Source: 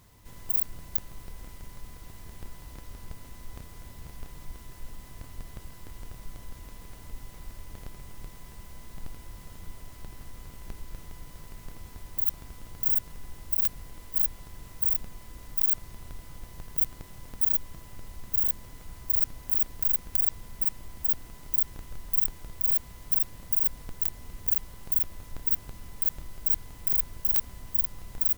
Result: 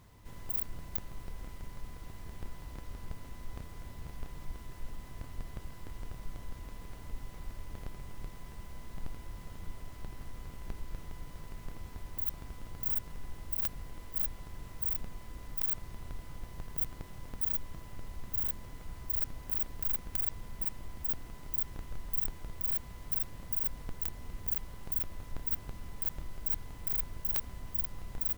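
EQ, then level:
high-shelf EQ 4,200 Hz −8 dB
0.0 dB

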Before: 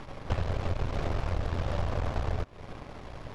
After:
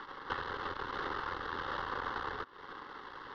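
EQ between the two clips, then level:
three-way crossover with the lows and the highs turned down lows −20 dB, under 330 Hz, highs −17 dB, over 3,500 Hz
low-shelf EQ 230 Hz −11.5 dB
phaser with its sweep stopped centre 2,400 Hz, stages 6
+7.0 dB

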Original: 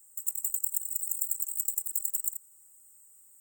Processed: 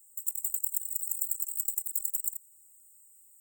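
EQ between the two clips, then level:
low-shelf EQ 360 Hz −8.5 dB
parametric band 3,800 Hz −14.5 dB 0.78 octaves
phaser with its sweep stopped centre 530 Hz, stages 4
0.0 dB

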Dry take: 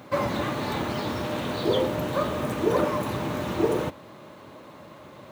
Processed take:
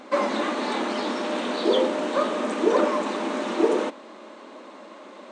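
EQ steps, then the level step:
linear-phase brick-wall band-pass 200–9,300 Hz
+3.0 dB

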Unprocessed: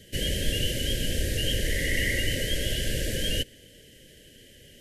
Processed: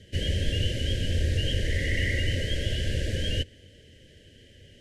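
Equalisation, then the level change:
high-frequency loss of the air 79 metres
parametric band 87 Hz +11 dB 0.57 octaves
−1.5 dB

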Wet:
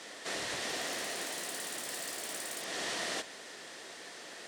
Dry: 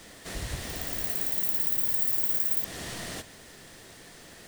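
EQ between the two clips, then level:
band-pass filter 380–7,600 Hz
+3.5 dB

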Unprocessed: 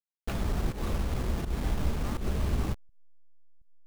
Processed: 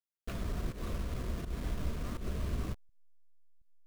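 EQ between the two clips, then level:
Butterworth band-reject 830 Hz, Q 6.1
−6.5 dB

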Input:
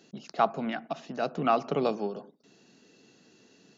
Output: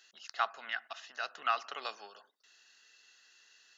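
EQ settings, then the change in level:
high-pass with resonance 1,700 Hz, resonance Q 1.6
notch filter 2,300 Hz, Q 5.7
0.0 dB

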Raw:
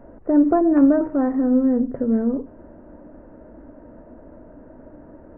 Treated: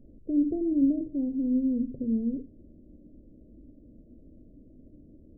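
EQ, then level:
Gaussian smoothing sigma 24 samples
−4.5 dB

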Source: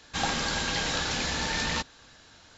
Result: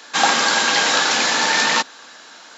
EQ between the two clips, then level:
high-pass filter 210 Hz 24 dB per octave
parametric band 1,100 Hz +8.5 dB 2.3 octaves
high-shelf EQ 4,500 Hz +9 dB
+6.0 dB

